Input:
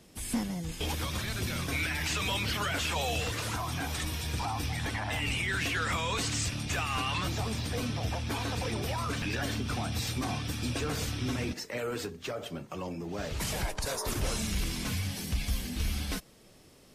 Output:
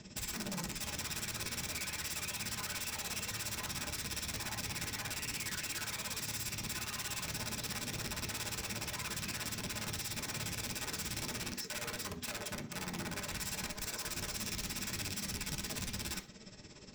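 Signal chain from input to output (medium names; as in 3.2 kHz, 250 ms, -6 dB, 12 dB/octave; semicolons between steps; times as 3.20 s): steep low-pass 7.7 kHz 96 dB/octave; in parallel at 0 dB: peak limiter -30 dBFS, peak gain reduction 10 dB; on the sum: compression 12:1, threshold -33 dBFS, peak gain reduction 11 dB; tremolo 17 Hz, depth 84%; integer overflow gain 36 dB; reverberation RT60 0.35 s, pre-delay 3 ms, DRR 3.5 dB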